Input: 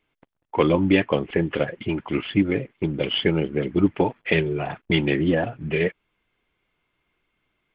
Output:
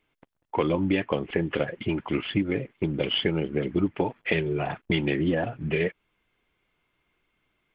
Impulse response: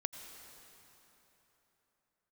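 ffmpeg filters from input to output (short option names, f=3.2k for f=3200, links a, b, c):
-af "acompressor=threshold=-22dB:ratio=3"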